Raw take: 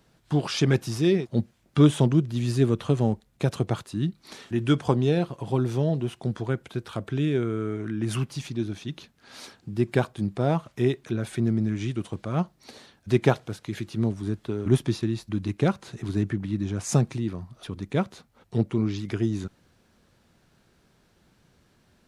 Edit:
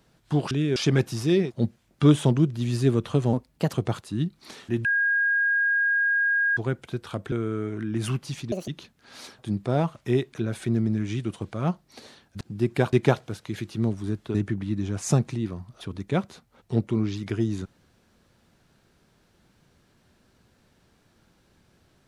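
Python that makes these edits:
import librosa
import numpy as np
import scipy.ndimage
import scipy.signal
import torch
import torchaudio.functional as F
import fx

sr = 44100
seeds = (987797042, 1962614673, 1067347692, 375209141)

y = fx.edit(x, sr, fx.speed_span(start_s=3.08, length_s=0.47, speed=1.18),
    fx.bleep(start_s=4.67, length_s=1.72, hz=1630.0, db=-19.5),
    fx.move(start_s=7.14, length_s=0.25, to_s=0.51),
    fx.speed_span(start_s=8.59, length_s=0.28, speed=1.76),
    fx.move(start_s=9.58, length_s=0.52, to_s=13.12),
    fx.cut(start_s=14.54, length_s=1.63), tone=tone)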